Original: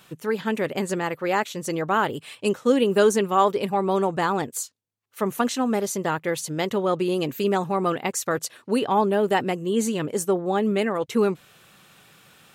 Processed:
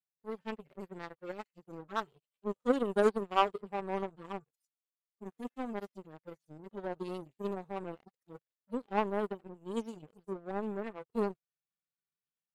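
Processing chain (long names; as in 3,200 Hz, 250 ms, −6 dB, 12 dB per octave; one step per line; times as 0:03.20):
harmonic-percussive split with one part muted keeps harmonic
power curve on the samples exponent 2
level −3 dB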